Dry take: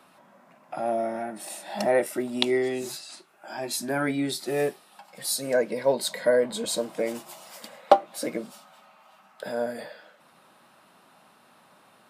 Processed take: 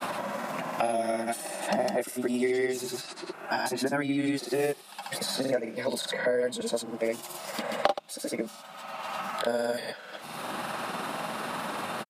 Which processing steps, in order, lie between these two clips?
granulator, pitch spread up and down by 0 st; three bands compressed up and down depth 100%

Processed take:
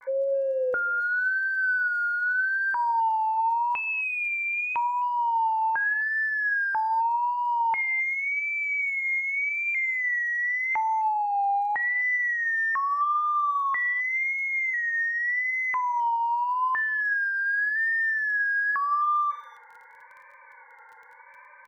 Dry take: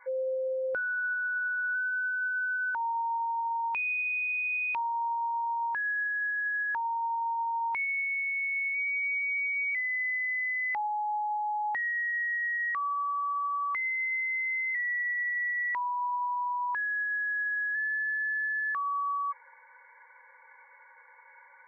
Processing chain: low-pass 2.2 kHz 12 dB/octave; vibrato 0.85 Hz 87 cents; crackle 17 per s -51 dBFS; speakerphone echo 260 ms, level -22 dB; simulated room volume 600 m³, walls furnished, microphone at 0.44 m; trim +6 dB

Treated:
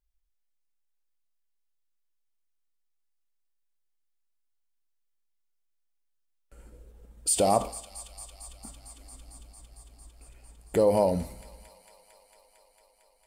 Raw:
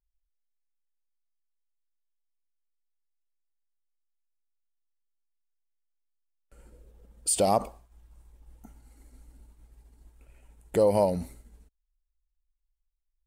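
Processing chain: in parallel at -2 dB: peak limiter -19.5 dBFS, peak gain reduction 7.5 dB; on the sum: feedback echo behind a high-pass 226 ms, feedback 83%, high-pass 1.8 kHz, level -14 dB; two-slope reverb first 0.4 s, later 1.8 s, from -20 dB, DRR 11 dB; trim -3 dB

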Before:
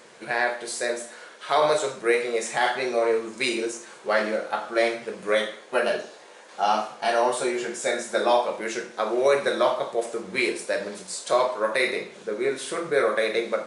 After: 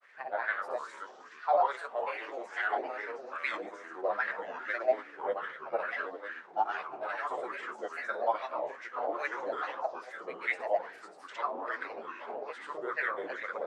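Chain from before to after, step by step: granulator 100 ms, grains 20 per s, pitch spread up and down by 3 st; ever faster or slower copies 83 ms, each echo -4 st, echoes 2, each echo -6 dB; wah-wah 2.4 Hz 670–1900 Hz, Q 3.9

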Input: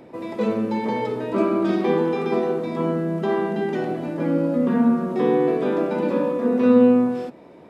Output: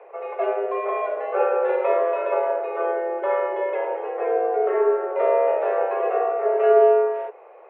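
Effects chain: mistuned SSB +180 Hz 220–2400 Hz

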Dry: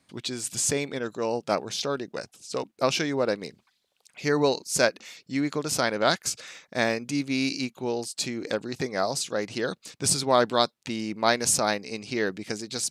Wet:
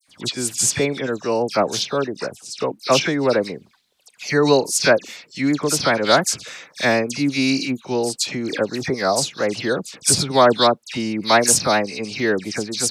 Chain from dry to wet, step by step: phase dispersion lows, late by 82 ms, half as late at 2.3 kHz; trim +7.5 dB

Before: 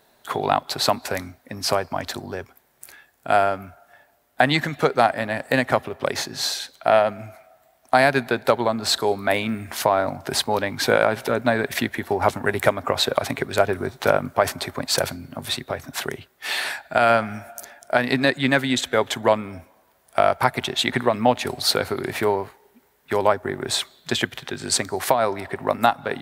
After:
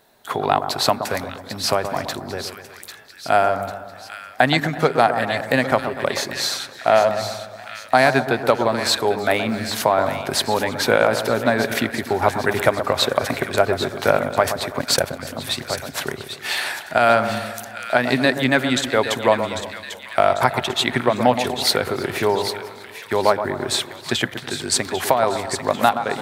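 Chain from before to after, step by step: two-band feedback delay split 1.5 kHz, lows 123 ms, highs 796 ms, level -9 dB; 14.72–15.27 s: transient shaper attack +3 dB, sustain -9 dB; modulated delay 326 ms, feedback 51%, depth 125 cents, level -21.5 dB; trim +1.5 dB

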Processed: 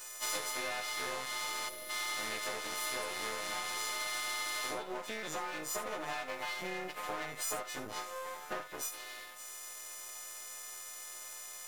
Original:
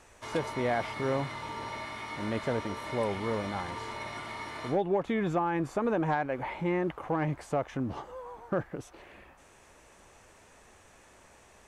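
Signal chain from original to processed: partials quantised in pitch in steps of 3 st; half-wave rectifier; bass shelf 460 Hz -6.5 dB; compression 10:1, threshold -39 dBFS, peak gain reduction 12 dB; tone controls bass -9 dB, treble +6 dB; gated-style reverb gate 90 ms rising, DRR 8 dB; time-frequency box 1.69–1.90 s, 700–9800 Hz -12 dB; trim +5 dB

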